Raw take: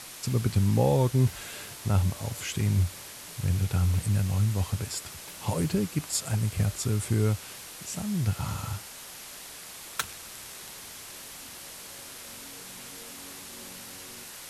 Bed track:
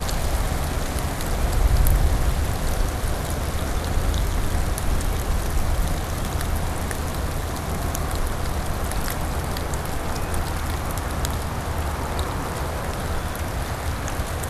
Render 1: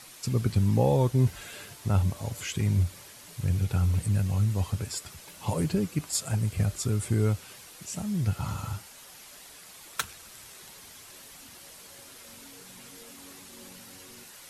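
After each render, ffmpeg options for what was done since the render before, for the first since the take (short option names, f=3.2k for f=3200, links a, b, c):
-af "afftdn=nr=7:nf=-44"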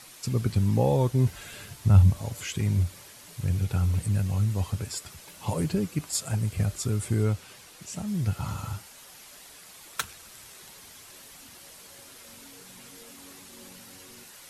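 -filter_complex "[0:a]asplit=3[a][b][c];[a]afade=t=out:st=1.45:d=0.02[d];[b]asubboost=boost=4:cutoff=220,afade=t=in:st=1.45:d=0.02,afade=t=out:st=2.2:d=0.02[e];[c]afade=t=in:st=2.2:d=0.02[f];[d][e][f]amix=inputs=3:normalize=0,asettb=1/sr,asplit=3[g][h][i];[g]atrim=end=7.234[j];[h]atrim=start=7.23:end=8.08,asetpts=PTS-STARTPTS,afade=t=in:d=0.004:c=qsin,afade=t=out:st=0.846:d=0.004:c=qsin,highshelf=f=9.5k:g=-6[k];[i]atrim=start=8.076[l];[j][k]acrossfade=d=0.004:c1=hsin:c2=qsin[m];[m][l]acrossfade=d=0.004:c1=qsin:c2=hsin"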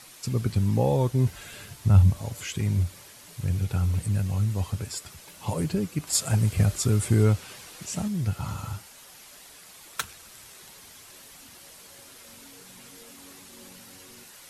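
-filter_complex "[0:a]asettb=1/sr,asplit=3[a][b][c];[a]atrim=end=6.074[d];[b]atrim=start=6.07:end=8.08,asetpts=PTS-STARTPTS,afade=t=in:d=0.004:c=qsin,afade=t=out:st=2.006:d=0.004:c=qsin,acontrast=23[e];[c]atrim=start=8.076[f];[d][e]acrossfade=d=0.004:c1=hsin:c2=qsin[g];[g][f]acrossfade=d=0.004:c1=qsin:c2=hsin"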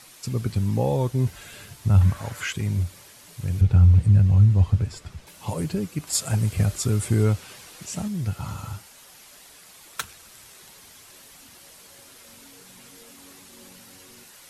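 -filter_complex "[0:a]asettb=1/sr,asplit=3[a][b][c];[a]atrim=end=2.014[d];[b]atrim=start=2.01:end=2.53,asetpts=PTS-STARTPTS,afade=t=in:d=0.004:c=qsin,afade=t=out:st=0.516:d=0.004:c=qsin,equalizer=f=1.5k:w=1.1:g=14[e];[c]atrim=start=2.526[f];[d][e]acrossfade=d=0.004:c1=hsin:c2=qsin[g];[g][f]acrossfade=d=0.004:c1=qsin:c2=hsin,asettb=1/sr,asplit=3[h][i][j];[h]atrim=end=3.614[k];[i]atrim=start=3.61:end=5.27,asetpts=PTS-STARTPTS,afade=t=in:d=0.004:c=qsin,afade=t=out:st=1.656:d=0.004:c=qsin,aemphasis=mode=reproduction:type=bsi[l];[j]atrim=start=5.266[m];[k][l]acrossfade=d=0.004:c1=hsin:c2=qsin[n];[n][m]acrossfade=d=0.004:c1=qsin:c2=hsin"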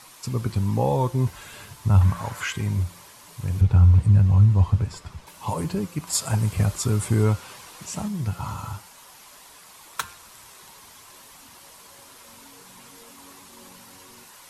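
-af "equalizer=f=1k:w=2.5:g=9.5,bandreject=f=175.1:t=h:w=4,bandreject=f=350.2:t=h:w=4,bandreject=f=525.3:t=h:w=4,bandreject=f=700.4:t=h:w=4,bandreject=f=875.5:t=h:w=4,bandreject=f=1.0506k:t=h:w=4,bandreject=f=1.2257k:t=h:w=4,bandreject=f=1.4008k:t=h:w=4,bandreject=f=1.5759k:t=h:w=4,bandreject=f=1.751k:t=h:w=4,bandreject=f=1.9261k:t=h:w=4,bandreject=f=2.1012k:t=h:w=4,bandreject=f=2.2763k:t=h:w=4,bandreject=f=2.4514k:t=h:w=4,bandreject=f=2.6265k:t=h:w=4,bandreject=f=2.8016k:t=h:w=4,bandreject=f=2.9767k:t=h:w=4,bandreject=f=3.1518k:t=h:w=4,bandreject=f=3.3269k:t=h:w=4,bandreject=f=3.502k:t=h:w=4,bandreject=f=3.6771k:t=h:w=4,bandreject=f=3.8522k:t=h:w=4,bandreject=f=4.0273k:t=h:w=4,bandreject=f=4.2024k:t=h:w=4,bandreject=f=4.3775k:t=h:w=4,bandreject=f=4.5526k:t=h:w=4,bandreject=f=4.7277k:t=h:w=4,bandreject=f=4.9028k:t=h:w=4,bandreject=f=5.0779k:t=h:w=4,bandreject=f=5.253k:t=h:w=4"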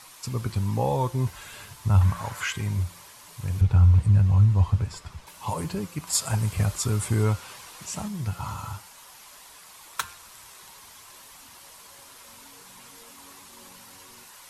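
-af "equalizer=f=250:t=o:w=2.7:g=-4.5"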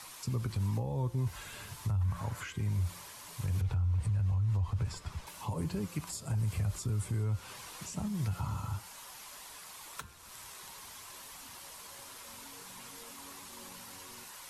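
-filter_complex "[0:a]acrossover=split=110|420[a][b][c];[a]acompressor=threshold=-20dB:ratio=4[d];[b]acompressor=threshold=-34dB:ratio=4[e];[c]acompressor=threshold=-44dB:ratio=4[f];[d][e][f]amix=inputs=3:normalize=0,alimiter=level_in=1.5dB:limit=-24dB:level=0:latency=1:release=57,volume=-1.5dB"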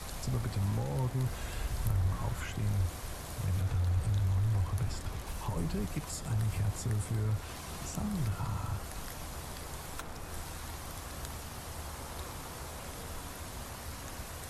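-filter_complex "[1:a]volume=-17.5dB[a];[0:a][a]amix=inputs=2:normalize=0"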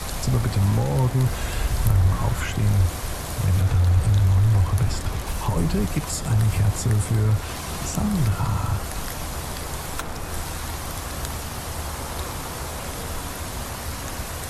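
-af "volume=12dB"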